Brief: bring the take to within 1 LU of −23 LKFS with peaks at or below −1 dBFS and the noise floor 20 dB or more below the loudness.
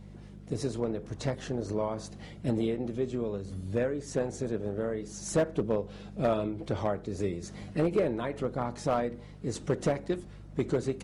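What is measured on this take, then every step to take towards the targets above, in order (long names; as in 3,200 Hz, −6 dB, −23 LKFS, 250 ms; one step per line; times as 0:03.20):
share of clipped samples 0.5%; peaks flattened at −19.5 dBFS; mains hum 50 Hz; hum harmonics up to 200 Hz; level of the hum −45 dBFS; integrated loudness −32.5 LKFS; sample peak −19.5 dBFS; target loudness −23.0 LKFS
→ clipped peaks rebuilt −19.5 dBFS
hum removal 50 Hz, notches 4
level +9.5 dB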